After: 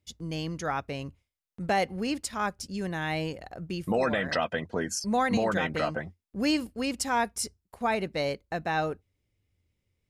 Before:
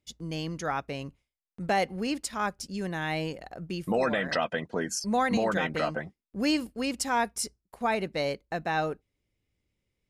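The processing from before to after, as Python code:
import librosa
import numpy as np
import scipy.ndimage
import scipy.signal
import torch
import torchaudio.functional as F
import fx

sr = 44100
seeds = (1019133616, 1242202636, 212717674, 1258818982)

y = fx.peak_eq(x, sr, hz=89.0, db=11.5, octaves=0.47)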